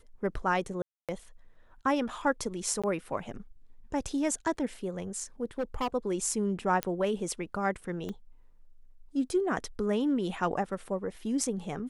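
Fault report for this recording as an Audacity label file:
0.820000	1.090000	gap 0.267 s
2.820000	2.840000	gap 16 ms
5.580000	5.880000	clipped -26.5 dBFS
6.830000	6.830000	pop -14 dBFS
8.090000	8.090000	pop -25 dBFS

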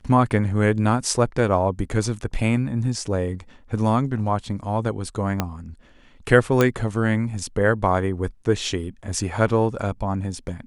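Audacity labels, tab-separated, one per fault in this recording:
5.400000	5.400000	pop -7 dBFS
6.610000	6.610000	pop -5 dBFS

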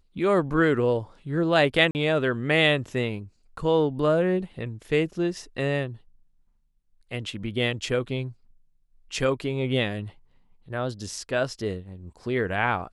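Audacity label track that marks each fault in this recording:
1.910000	1.950000	gap 39 ms

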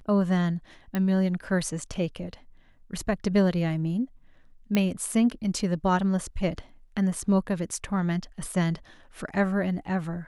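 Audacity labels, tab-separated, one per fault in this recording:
0.950000	0.950000	pop -16 dBFS
4.750000	4.750000	pop -11 dBFS

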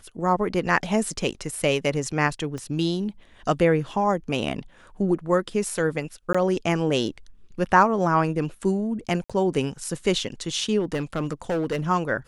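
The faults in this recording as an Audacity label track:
2.580000	2.580000	pop -22 dBFS
6.330000	6.340000	gap 15 ms
9.240000	9.300000	gap 56 ms
10.790000	11.810000	clipped -21 dBFS

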